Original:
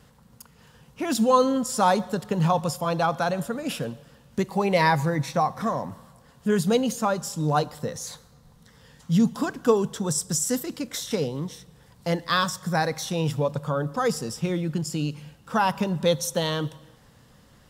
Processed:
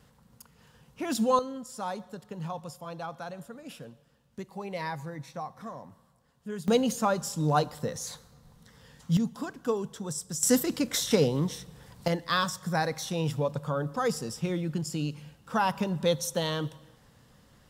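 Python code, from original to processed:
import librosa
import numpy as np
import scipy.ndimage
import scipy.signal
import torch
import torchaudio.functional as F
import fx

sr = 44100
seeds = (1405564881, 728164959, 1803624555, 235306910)

y = fx.gain(x, sr, db=fx.steps((0.0, -5.0), (1.39, -14.5), (6.68, -2.0), (9.17, -9.0), (10.43, 3.0), (12.08, -4.0)))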